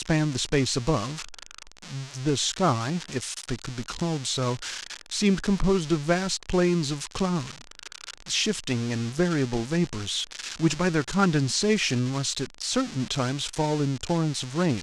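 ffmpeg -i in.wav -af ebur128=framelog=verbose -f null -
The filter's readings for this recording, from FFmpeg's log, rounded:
Integrated loudness:
  I:         -26.2 LUFS
  Threshold: -36.6 LUFS
Loudness range:
  LRA:         3.0 LU
  Threshold: -46.6 LUFS
  LRA low:   -28.2 LUFS
  LRA high:  -25.2 LUFS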